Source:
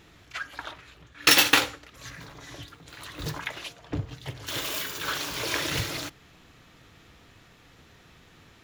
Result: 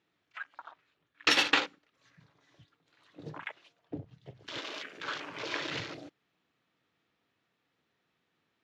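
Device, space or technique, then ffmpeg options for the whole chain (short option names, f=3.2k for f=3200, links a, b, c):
over-cleaned archive recording: -af "highpass=180,lowpass=5k,afwtdn=0.0178,volume=-5.5dB"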